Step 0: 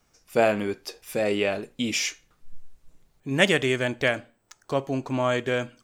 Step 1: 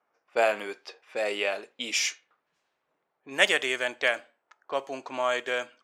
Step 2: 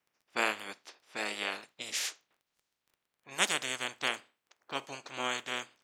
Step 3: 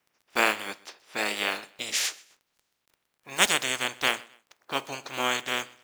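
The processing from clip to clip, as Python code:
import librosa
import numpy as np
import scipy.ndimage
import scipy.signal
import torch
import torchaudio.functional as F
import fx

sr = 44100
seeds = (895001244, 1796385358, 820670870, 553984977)

y1 = fx.env_lowpass(x, sr, base_hz=1300.0, full_db=-22.0)
y1 = scipy.signal.sosfilt(scipy.signal.butter(2, 610.0, 'highpass', fs=sr, output='sos'), y1)
y2 = fx.spec_clip(y1, sr, under_db=22)
y2 = fx.dmg_crackle(y2, sr, seeds[0], per_s=18.0, level_db=-45.0)
y2 = F.gain(torch.from_numpy(y2), -7.0).numpy()
y3 = fx.block_float(y2, sr, bits=5)
y3 = fx.echo_feedback(y3, sr, ms=128, feedback_pct=34, wet_db=-23.5)
y3 = F.gain(torch.from_numpy(y3), 7.0).numpy()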